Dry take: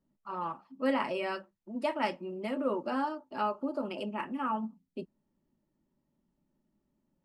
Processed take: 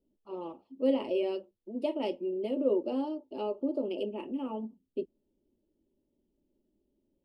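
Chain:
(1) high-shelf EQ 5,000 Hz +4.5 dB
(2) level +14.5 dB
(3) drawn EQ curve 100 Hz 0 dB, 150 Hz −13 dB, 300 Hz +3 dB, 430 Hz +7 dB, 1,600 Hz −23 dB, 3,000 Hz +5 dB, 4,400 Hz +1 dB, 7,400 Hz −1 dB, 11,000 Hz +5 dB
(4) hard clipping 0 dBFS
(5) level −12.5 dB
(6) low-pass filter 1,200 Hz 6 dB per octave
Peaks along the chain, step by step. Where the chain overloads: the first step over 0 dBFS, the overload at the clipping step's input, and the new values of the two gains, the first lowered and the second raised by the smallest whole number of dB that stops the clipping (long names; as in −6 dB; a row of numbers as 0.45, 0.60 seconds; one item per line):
−16.0, −1.5, −2.5, −2.5, −15.0, −16.0 dBFS
no step passes full scale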